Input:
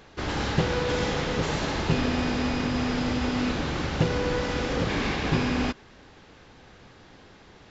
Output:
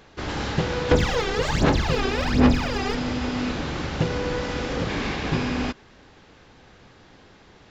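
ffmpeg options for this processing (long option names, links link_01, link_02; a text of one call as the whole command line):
ffmpeg -i in.wav -filter_complex "[0:a]asettb=1/sr,asplit=3[link_01][link_02][link_03];[link_01]atrim=end=0.914[link_04];[link_02]atrim=start=0.91:end=2.95,asetpts=PTS-STARTPTS,afade=type=in:duration=0.004:curve=qsin,afade=type=out:start_time=2.036:duration=0.004:curve=qsin,aphaser=in_gain=1:out_gain=1:delay=2.6:decay=0.76:speed=1.3:type=sinusoidal[link_05];[link_03]atrim=start=2.946[link_06];[link_04][link_05]acrossfade=duration=0.004:curve1=hsin:curve2=qsin[link_07];[link_07][link_06]acrossfade=duration=0.004:curve1=qsin:curve2=hsin" out.wav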